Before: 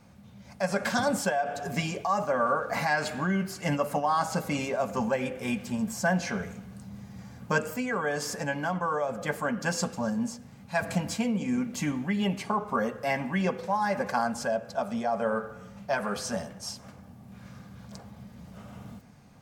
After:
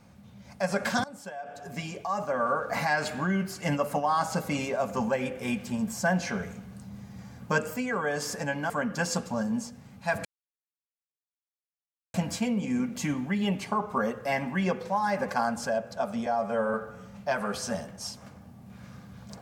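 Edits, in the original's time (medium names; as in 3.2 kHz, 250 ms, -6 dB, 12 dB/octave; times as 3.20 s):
1.04–2.73 s: fade in, from -21 dB
8.70–9.37 s: delete
10.92 s: insert silence 1.89 s
15.04–15.36 s: stretch 1.5×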